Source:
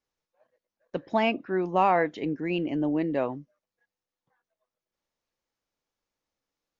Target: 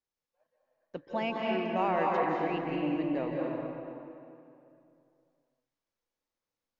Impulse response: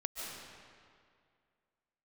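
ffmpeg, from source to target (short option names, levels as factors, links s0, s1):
-filter_complex "[1:a]atrim=start_sample=2205,asetrate=36603,aresample=44100[s0];[0:a][s0]afir=irnorm=-1:irlink=0,volume=0.447"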